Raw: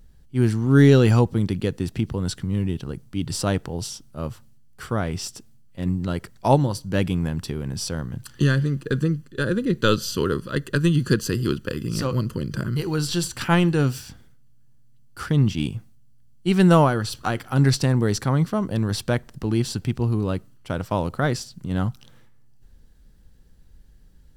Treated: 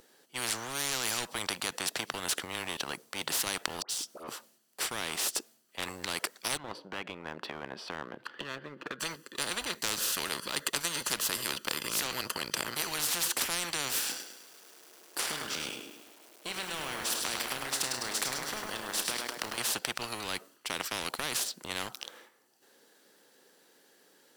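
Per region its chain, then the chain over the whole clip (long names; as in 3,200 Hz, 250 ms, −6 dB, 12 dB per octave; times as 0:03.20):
0:03.82–0:04.28: volume swells 177 ms + downward compressor 2.5 to 1, threshold −43 dBFS + all-pass dispersion highs, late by 75 ms, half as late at 1,600 Hz
0:06.57–0:09.00: downward compressor 10 to 1, threshold −29 dBFS + high-frequency loss of the air 410 metres
0:13.99–0:19.58: downward compressor, threshold −31 dBFS + flutter between parallel walls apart 5.5 metres, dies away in 0.2 s + feedback echo at a low word length 103 ms, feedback 55%, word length 9 bits, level −6.5 dB
whole clip: high-pass filter 360 Hz 24 dB per octave; leveller curve on the samples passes 1; every bin compressed towards the loudest bin 10 to 1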